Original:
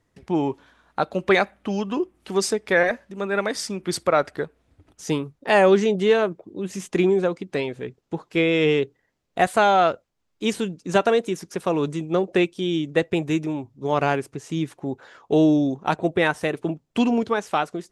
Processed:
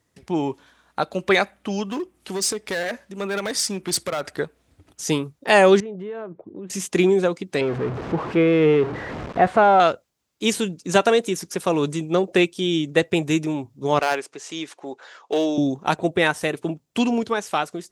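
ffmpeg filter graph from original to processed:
-filter_complex "[0:a]asettb=1/sr,asplit=3[a][b][c];[a]atrim=end=1.904[d];[b]atrim=start=1.9:end=4.27,asetpts=PTS-STARTPTS,afade=t=in:d=0.004:c=qsin,afade=t=out:st=2.366:d=0.004:c=qsin,acompressor=threshold=-22dB:ratio=3:attack=3.2:release=140:knee=1:detection=peak,asoftclip=type=hard:threshold=-22.5dB[e];[c]atrim=start=4.266[f];[d][e]acrossfade=d=0.004:c1=hsin:c2=qsin[g];[g][f]acrossfade=d=0.004:c1=qsin:c2=hsin,asettb=1/sr,asplit=3[h][i][j];[h]atrim=end=5.804[k];[i]atrim=start=5.8:end=6.7,asetpts=PTS-STARTPTS,afade=t=in:d=0.004:c=qsin,afade=t=out:st=0.896:d=0.004:c=qsin,lowpass=1.4k,acompressor=threshold=-34dB:ratio=4:attack=3.2:release=140:knee=1:detection=peak[l];[j]atrim=start=6.696[m];[k][l]acrossfade=d=0.004:c1=hsin:c2=qsin[n];[n][m]acrossfade=d=0.004:c1=qsin:c2=hsin,asettb=1/sr,asplit=3[o][p][q];[o]atrim=end=7.614[r];[p]atrim=start=7.61:end=9.8,asetpts=PTS-STARTPTS,afade=t=in:d=0.004:c=qsin,afade=t=out:st=2.186:d=0.004:c=qsin,aeval=exprs='val(0)+0.5*0.0631*sgn(val(0))':c=same,lowpass=1.4k[s];[q]atrim=start=9.796[t];[r][s]acrossfade=d=0.004:c1=hsin:c2=qsin[u];[u][t]acrossfade=d=0.004:c1=qsin:c2=hsin,asettb=1/sr,asplit=3[v][w][x];[v]atrim=end=13.994[y];[w]atrim=start=13.99:end=15.58,asetpts=PTS-STARTPTS,afade=t=in:d=0.004:c=qsin,afade=t=out:st=1.586:d=0.004:c=qsin,highpass=480,lowpass=6.9k,volume=16dB,asoftclip=hard,volume=-16dB[z];[x]atrim=start=15.576[aa];[y][z]acrossfade=d=0.004:c1=hsin:c2=qsin[ab];[ab][aa]acrossfade=d=0.004:c1=qsin:c2=hsin,highpass=53,highshelf=f=3.7k:g=9,dynaudnorm=f=430:g=13:m=11.5dB,volume=-1dB"

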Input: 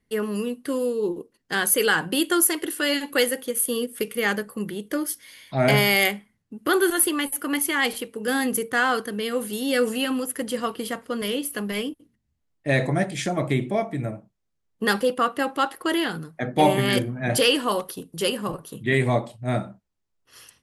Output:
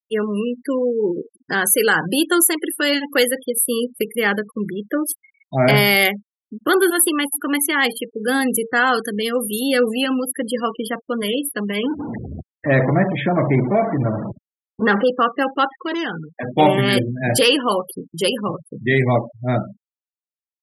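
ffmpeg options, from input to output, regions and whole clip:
-filter_complex "[0:a]asettb=1/sr,asplit=3[a][b][c];[a]atrim=end=1.054[d];[b]atrim=start=1.05:end=2.18,asetpts=PTS-STARTPTS,afade=t=in:d=0.004:c=qsin,afade=t=out:st=1.126:d=0.004:c=qsin,equalizer=f=3.4k:t=o:w=0.54:g=-5,acompressor=mode=upward:threshold=-23dB:ratio=2.5:attack=3.2:release=140:knee=2.83:detection=peak[e];[c]atrim=start=2.176[f];[d][e]acrossfade=d=0.004:c1=hsin:c2=qsin[g];[g][f]acrossfade=d=0.004:c1=qsin:c2=hsin,asettb=1/sr,asplit=3[h][i][j];[h]atrim=end=8.874[k];[i]atrim=start=8.87:end=9.68,asetpts=PTS-STARTPTS,afade=t=in:d=0.004:c=qsin,afade=t=out:st=0.806:d=0.004:c=qsin,highshelf=f=4.1k:g=5,acompressor=mode=upward:threshold=-26dB:ratio=2.5:attack=3.2:release=140:knee=2.83:detection=peak[l];[j]atrim=start=9.676[m];[k][l]acrossfade=d=0.004:c1=hsin:c2=qsin[n];[n][m]acrossfade=d=0.004:c1=qsin:c2=hsin,asettb=1/sr,asplit=3[o][p][q];[o]atrim=end=11.834[r];[p]atrim=start=11.83:end=15.04,asetpts=PTS-STARTPTS,afade=t=in:d=0.004:c=qsin,afade=t=out:st=3.206:d=0.004:c=qsin,aeval=exprs='val(0)+0.5*0.0531*sgn(val(0))':c=same,lowpass=2.3k,bandreject=f=144.2:t=h:w=4,bandreject=f=288.4:t=h:w=4,bandreject=f=432.6:t=h:w=4,bandreject=f=576.8:t=h:w=4,bandreject=f=721:t=h:w=4[s];[q]atrim=start=15.036[t];[r][s]acrossfade=d=0.004:c1=hsin:c2=qsin[u];[u][t]acrossfade=d=0.004:c1=qsin:c2=hsin,asettb=1/sr,asplit=3[v][w][x];[v]atrim=end=15.704[y];[w]atrim=start=15.7:end=16.57,asetpts=PTS-STARTPTS,afade=t=in:d=0.004:c=qsin,afade=t=out:st=0.866:d=0.004:c=qsin,acrossover=split=6800[z][aa];[aa]acompressor=threshold=-45dB:ratio=4:attack=1:release=60[ab];[z][ab]amix=inputs=2:normalize=0,lowshelf=f=330:g=-3,asoftclip=type=hard:threshold=-26dB[ac];[x]atrim=start=16.566[ad];[y][ac]acrossfade=d=0.004:c1=hsin:c2=qsin[ae];[ae][ad]acrossfade=d=0.004:c1=qsin:c2=hsin,acontrast=76,highpass=f=83:w=0.5412,highpass=f=83:w=1.3066,afftfilt=real='re*gte(hypot(re,im),0.0631)':imag='im*gte(hypot(re,im),0.0631)':win_size=1024:overlap=0.75,volume=-1.5dB"

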